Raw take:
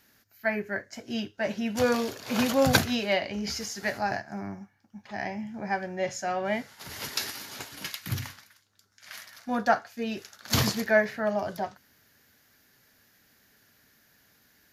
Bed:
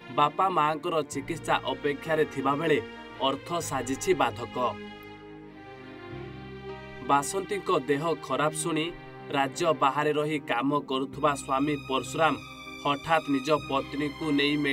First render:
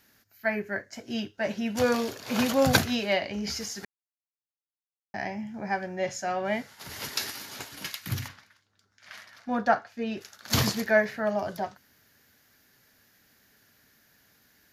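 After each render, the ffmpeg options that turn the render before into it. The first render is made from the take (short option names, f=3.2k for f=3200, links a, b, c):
-filter_complex "[0:a]asettb=1/sr,asplit=3[a][b][c];[a]atrim=end=8.284[d];[b]atrim=start=8.28:end=10.21,asetpts=PTS-STARTPTS,afade=t=in:d=0.004:c=qsin,afade=t=out:st=1.926:d=0.004:c=qsin,aemphasis=mode=reproduction:type=50fm[e];[c]atrim=start=10.206[f];[d][e]acrossfade=d=0.004:c1=hsin:c2=qsin[g];[g][f]acrossfade=d=0.004:c1=qsin:c2=hsin,asplit=3[h][i][j];[h]atrim=end=3.85,asetpts=PTS-STARTPTS,afade=t=out:st=3.846:d=0.004:c=hsin[k];[i]atrim=start=3.85:end=5.14,asetpts=PTS-STARTPTS,volume=0[l];[j]atrim=start=5.14,asetpts=PTS-STARTPTS,afade=t=in:d=0.004:c=hsin[m];[k][l][m]concat=n=3:v=0:a=1"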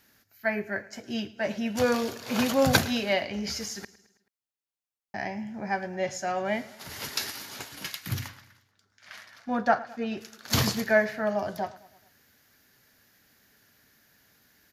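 -af "aecho=1:1:108|216|324|432:0.106|0.0583|0.032|0.0176"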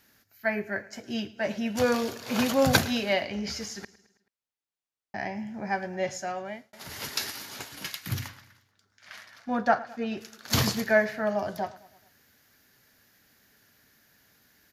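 -filter_complex "[0:a]asettb=1/sr,asplit=3[a][b][c];[a]atrim=end=3.344[d];[b]atrim=start=3.34:end=5.35,asetpts=PTS-STARTPTS,afade=t=in:d=0.004:c=qsin,afade=t=out:st=2.006:d=0.004:c=qsin,highshelf=f=9.5k:g=-10.5[e];[c]atrim=start=5.346[f];[d][e]acrossfade=d=0.004:c1=hsin:c2=qsin[g];[g][f]acrossfade=d=0.004:c1=qsin:c2=hsin,asplit=2[h][i];[h]atrim=end=6.73,asetpts=PTS-STARTPTS,afade=t=out:st=6.09:d=0.64[j];[i]atrim=start=6.73,asetpts=PTS-STARTPTS,afade=t=in:d=0.004:c=hsin[k];[j][k]concat=n=2:v=0:a=1"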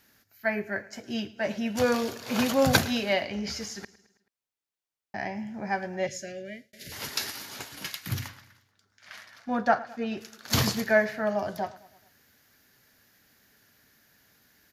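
-filter_complex "[0:a]asettb=1/sr,asplit=3[a][b][c];[a]atrim=end=6.074[d];[b]atrim=start=6.07:end=6.92,asetpts=PTS-STARTPTS,afade=t=in:d=0.004:c=qsin,afade=t=out:st=0.846:d=0.004:c=qsin,asuperstop=centerf=1000:order=8:qfactor=0.9[e];[c]atrim=start=6.916[f];[d][e]acrossfade=d=0.004:c1=hsin:c2=qsin[g];[g][f]acrossfade=d=0.004:c1=qsin:c2=hsin"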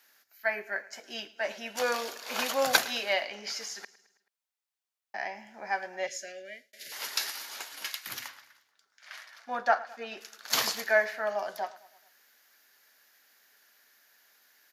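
-af "highpass=640"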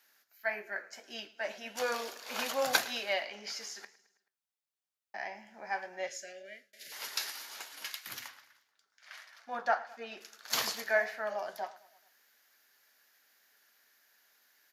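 -af "flanger=delay=8.4:depth=5.2:regen=-75:speed=1.7:shape=triangular"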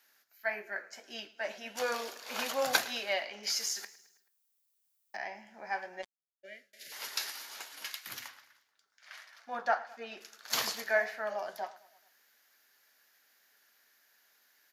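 -filter_complex "[0:a]asettb=1/sr,asplit=3[a][b][c];[a]atrim=end=3.434[d];[b]atrim=start=3.43:end=5.17,asetpts=PTS-STARTPTS,afade=t=in:d=0.004:c=qsin,afade=t=out:st=1.736:d=0.004:c=qsin,aemphasis=mode=production:type=75kf[e];[c]atrim=start=5.166[f];[d][e]acrossfade=d=0.004:c1=hsin:c2=qsin[g];[g][f]acrossfade=d=0.004:c1=qsin:c2=hsin,asplit=3[h][i][j];[h]afade=t=out:st=6.01:d=0.02[k];[i]acrusher=bits=3:mix=0:aa=0.5,afade=t=in:st=6.01:d=0.02,afade=t=out:st=6.43:d=0.02[l];[j]afade=t=in:st=6.43:d=0.02[m];[k][l][m]amix=inputs=3:normalize=0"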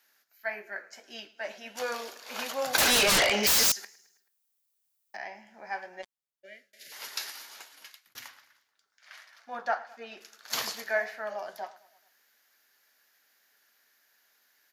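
-filter_complex "[0:a]asettb=1/sr,asplit=3[a][b][c];[a]atrim=end=2.784[d];[b]atrim=start=2.78:end=3.72,asetpts=PTS-STARTPTS,afade=t=in:d=0.004:c=qsin,afade=t=out:st=0.936:d=0.004:c=qsin,aeval=exprs='0.112*sin(PI/2*7.94*val(0)/0.112)':c=same[e];[c]atrim=start=3.716[f];[d][e]acrossfade=d=0.004:c1=hsin:c2=qsin[g];[g][f]acrossfade=d=0.004:c1=qsin:c2=hsin,asplit=2[h][i];[h]atrim=end=8.15,asetpts=PTS-STARTPTS,afade=t=out:st=7.4:d=0.75[j];[i]atrim=start=8.15,asetpts=PTS-STARTPTS,afade=t=in:d=0.004:c=hsin[k];[j][k]concat=n=2:v=0:a=1"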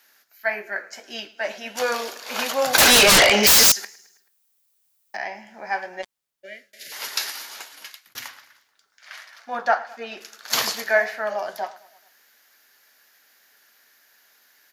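-af "volume=9.5dB,alimiter=limit=-3dB:level=0:latency=1"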